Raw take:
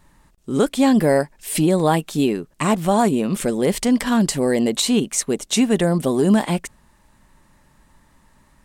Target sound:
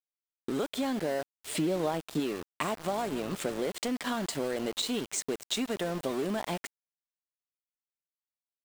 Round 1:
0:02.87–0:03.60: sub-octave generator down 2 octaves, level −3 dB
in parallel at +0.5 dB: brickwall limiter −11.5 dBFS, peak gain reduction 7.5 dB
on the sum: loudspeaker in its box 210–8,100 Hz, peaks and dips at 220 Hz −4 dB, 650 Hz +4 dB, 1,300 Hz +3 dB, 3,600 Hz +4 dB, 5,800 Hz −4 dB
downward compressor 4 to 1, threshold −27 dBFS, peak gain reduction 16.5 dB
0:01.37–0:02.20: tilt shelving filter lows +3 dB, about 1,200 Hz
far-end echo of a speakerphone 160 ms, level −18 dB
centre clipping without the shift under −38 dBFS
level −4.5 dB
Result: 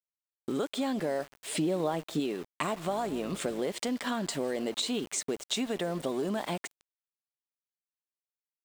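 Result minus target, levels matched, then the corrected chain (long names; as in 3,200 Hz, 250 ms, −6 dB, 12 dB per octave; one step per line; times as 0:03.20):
centre clipping without the shift: distortion −7 dB
0:02.87–0:03.60: sub-octave generator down 2 octaves, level −3 dB
in parallel at +0.5 dB: brickwall limiter −11.5 dBFS, peak gain reduction 7.5 dB
on the sum: loudspeaker in its box 210–8,100 Hz, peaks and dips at 220 Hz −4 dB, 650 Hz +4 dB, 1,300 Hz +3 dB, 3,600 Hz +4 dB, 5,800 Hz −4 dB
downward compressor 4 to 1, threshold −27 dBFS, peak gain reduction 16.5 dB
0:01.37–0:02.20: tilt shelving filter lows +3 dB, about 1,200 Hz
far-end echo of a speakerphone 160 ms, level −18 dB
centre clipping without the shift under −32 dBFS
level −4.5 dB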